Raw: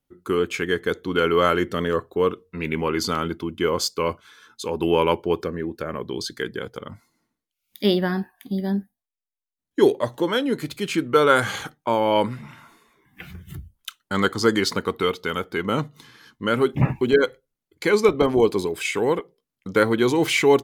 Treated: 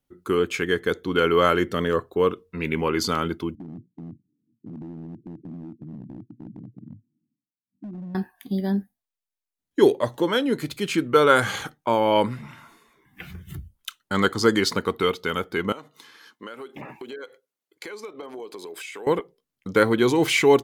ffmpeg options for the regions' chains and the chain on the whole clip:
-filter_complex "[0:a]asettb=1/sr,asplit=3[a][b][c];[a]atrim=end=3.554[d];[b]atrim=start=3.55:end=8.15,asetpts=PTS-STARTPTS,afade=t=in:d=0.004:c=qsin,afade=t=out:st=4.596:d=0.004:c=qsin,asuperpass=centerf=180:order=12:qfactor=0.87,acompressor=threshold=-32dB:ratio=10:attack=3.2:release=140:knee=1:detection=peak,asoftclip=type=hard:threshold=-32.5dB[e];[c]atrim=start=8.146[f];[d][e]acrossfade=d=0.004:c1=hsin:c2=qsin[g];[g][f]acrossfade=d=0.004:c1=qsin:c2=hsin,asettb=1/sr,asplit=3[h][i][j];[h]atrim=end=15.724[k];[i]atrim=start=15.72:end=19.07,asetpts=PTS-STARTPTS,afade=t=in:d=0.004:c=qsin,afade=t=out:st=3.346:d=0.004:c=qsin,highpass=380,acompressor=threshold=-34dB:ratio=8:attack=3.2:release=140:knee=1:detection=peak[l];[j]atrim=start=19.066[m];[k][l]acrossfade=d=0.004:c1=hsin:c2=qsin[n];[n][m]acrossfade=d=0.004:c1=qsin:c2=hsin"

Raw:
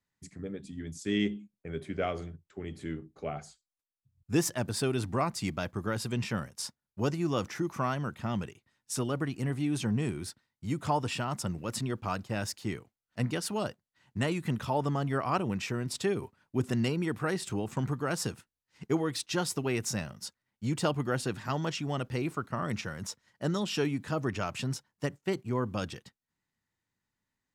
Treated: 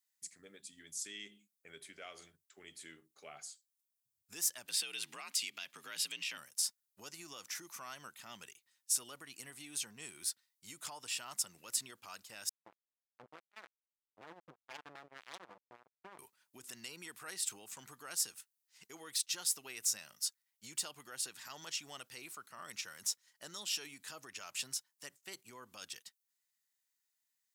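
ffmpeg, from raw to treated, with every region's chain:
-filter_complex "[0:a]asettb=1/sr,asplit=3[a][b][c];[a]atrim=end=4.664[d];[b]atrim=start=4.66:end=6.38,asetpts=PTS-STARTPTS,afade=t=in:d=0.004:c=qsin,afade=t=out:st=1.716:d=0.004:c=qsin,equalizer=f=2.8k:w=0.99:g=14.5,acompressor=threshold=-34dB:ratio=2.5:attack=3.2:release=140:knee=1:detection=peak,afreqshift=54[e];[c]atrim=start=6.376[f];[d][e]acrossfade=d=0.004:c1=hsin:c2=qsin[g];[g][f]acrossfade=d=0.004:c1=qsin:c2=hsin,asettb=1/sr,asplit=3[h][i][j];[h]atrim=end=12.494[k];[i]atrim=start=12.49:end=16.19,asetpts=PTS-STARTPTS,afade=t=in:d=0.004:c=qsin,afade=t=out:st=3.696:d=0.004:c=qsin,lowpass=f=1k:w=0.5412,lowpass=f=1k:w=1.3066,aecho=1:1:6:0.6,atrim=end_sample=163170,acrusher=bits=3:mix=0:aa=0.5[l];[j]atrim=start=16.186[m];[k][l]acrossfade=d=0.004:c1=hsin:c2=qsin[n];[n][m]acrossfade=d=0.004:c1=qsin:c2=hsin,alimiter=level_in=2.5dB:limit=-24dB:level=0:latency=1:release=137,volume=-2.5dB,aderivative,volume=6dB"

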